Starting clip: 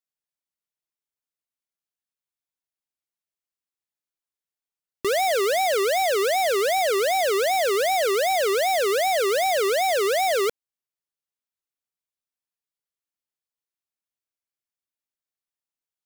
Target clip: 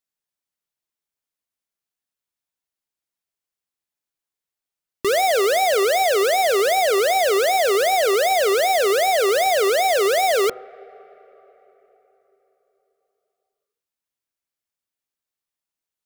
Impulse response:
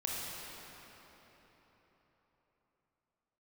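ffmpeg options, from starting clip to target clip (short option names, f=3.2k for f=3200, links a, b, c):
-filter_complex "[0:a]bandreject=f=125.1:t=h:w=4,bandreject=f=250.2:t=h:w=4,bandreject=f=375.3:t=h:w=4,bandreject=f=500.4:t=h:w=4,bandreject=f=625.5:t=h:w=4,bandreject=f=750.6:t=h:w=4,bandreject=f=875.7:t=h:w=4,bandreject=f=1.0008k:t=h:w=4,bandreject=f=1.1259k:t=h:w=4,bandreject=f=1.251k:t=h:w=4,bandreject=f=1.3761k:t=h:w=4,asplit=2[a][b];[1:a]atrim=start_sample=2205,lowpass=1.9k[c];[b][c]afir=irnorm=-1:irlink=0,volume=-23.5dB[d];[a][d]amix=inputs=2:normalize=0,volume=3.5dB"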